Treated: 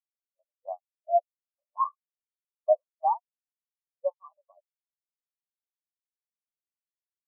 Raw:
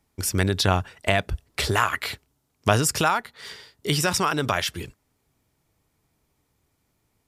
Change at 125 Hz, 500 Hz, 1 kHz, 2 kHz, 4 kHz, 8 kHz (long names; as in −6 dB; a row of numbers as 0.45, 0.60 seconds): below −40 dB, −2.5 dB, −4.5 dB, below −40 dB, below −40 dB, below −40 dB